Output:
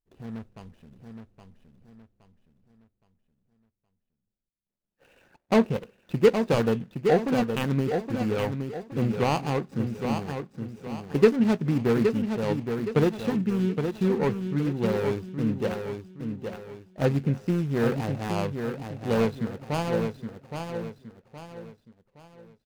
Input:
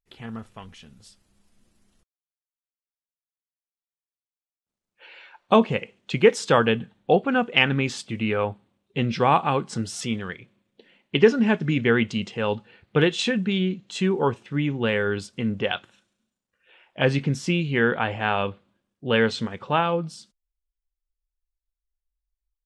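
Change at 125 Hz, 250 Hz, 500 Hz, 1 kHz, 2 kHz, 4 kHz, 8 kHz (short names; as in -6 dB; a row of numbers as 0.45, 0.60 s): 0.0, -0.5, -2.0, -6.5, -10.5, -11.0, -8.0 dB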